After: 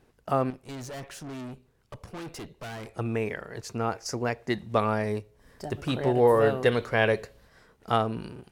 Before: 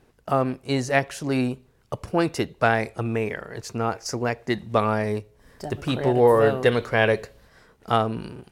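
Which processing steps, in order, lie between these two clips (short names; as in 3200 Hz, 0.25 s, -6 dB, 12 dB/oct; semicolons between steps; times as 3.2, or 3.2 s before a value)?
0.5–2.94 tube stage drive 33 dB, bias 0.55; gain -3.5 dB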